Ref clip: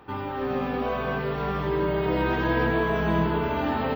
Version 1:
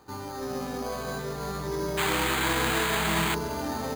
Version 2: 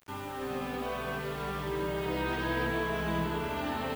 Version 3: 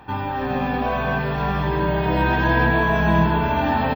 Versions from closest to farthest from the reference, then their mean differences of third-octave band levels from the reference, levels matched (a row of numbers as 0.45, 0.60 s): 3, 2, 1; 2.0, 6.0, 9.5 dB